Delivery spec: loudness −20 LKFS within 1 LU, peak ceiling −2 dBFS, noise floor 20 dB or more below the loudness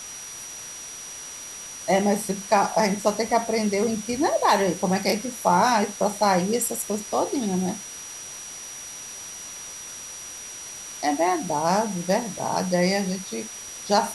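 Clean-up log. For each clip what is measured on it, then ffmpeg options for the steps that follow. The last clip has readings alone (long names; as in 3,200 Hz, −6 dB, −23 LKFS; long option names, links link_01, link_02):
interfering tone 5,800 Hz; level of the tone −37 dBFS; background noise floor −38 dBFS; target noise floor −45 dBFS; integrated loudness −25.0 LKFS; sample peak −6.0 dBFS; target loudness −20.0 LKFS
→ -af "bandreject=frequency=5800:width=30"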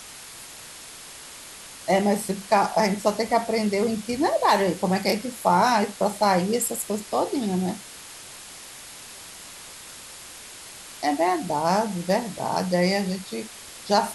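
interfering tone none found; background noise floor −42 dBFS; target noise floor −44 dBFS
→ -af "afftdn=noise_reduction=6:noise_floor=-42"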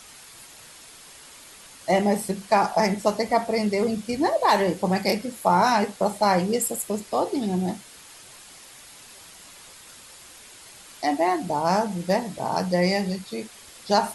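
background noise floor −47 dBFS; integrated loudness −23.5 LKFS; sample peak −6.5 dBFS; target loudness −20.0 LKFS
→ -af "volume=3.5dB"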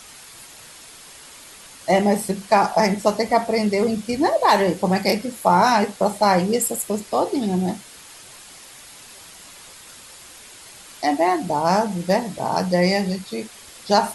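integrated loudness −20.0 LKFS; sample peak −3.0 dBFS; background noise floor −43 dBFS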